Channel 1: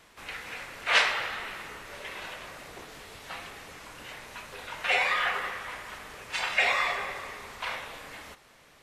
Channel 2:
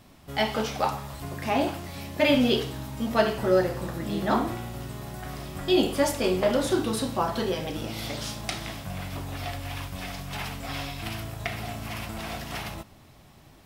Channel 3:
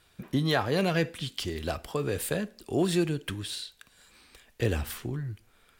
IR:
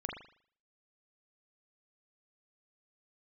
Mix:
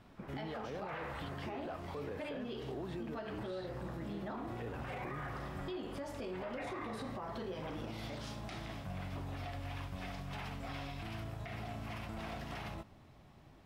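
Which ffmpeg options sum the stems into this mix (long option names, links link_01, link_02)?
-filter_complex "[0:a]lowpass=1100,volume=-10dB[link_01];[1:a]acompressor=threshold=-27dB:ratio=6,volume=-6dB[link_02];[2:a]alimiter=level_in=1dB:limit=-24dB:level=0:latency=1,volume=-1dB,bandpass=frequency=770:width_type=q:width=0.57:csg=0,volume=0.5dB[link_03];[link_02][link_03]amix=inputs=2:normalize=0,lowpass=frequency=2200:poles=1,acompressor=threshold=-37dB:ratio=6,volume=0dB[link_04];[link_01][link_04]amix=inputs=2:normalize=0,alimiter=level_in=10dB:limit=-24dB:level=0:latency=1:release=13,volume=-10dB"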